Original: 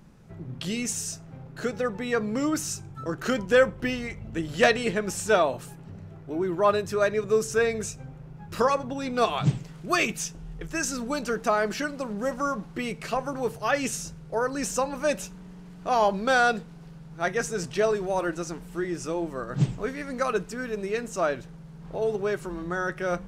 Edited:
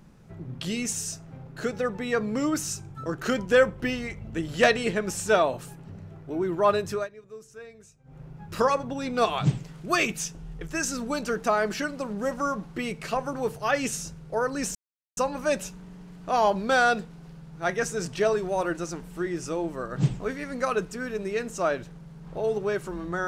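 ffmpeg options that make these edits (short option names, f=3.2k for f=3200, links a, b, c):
-filter_complex "[0:a]asplit=4[a][b][c][d];[a]atrim=end=7.08,asetpts=PTS-STARTPTS,afade=t=out:st=6.92:d=0.16:silence=0.0944061[e];[b]atrim=start=7.08:end=8.04,asetpts=PTS-STARTPTS,volume=-20.5dB[f];[c]atrim=start=8.04:end=14.75,asetpts=PTS-STARTPTS,afade=t=in:d=0.16:silence=0.0944061,afade=t=out:st=6.706:d=0.004:c=hsin,apad=pad_dur=0.42[g];[d]atrim=start=14.75,asetpts=PTS-STARTPTS,afade=t=in:d=0.004:c=hsin[h];[e][f][g][h]concat=n=4:v=0:a=1"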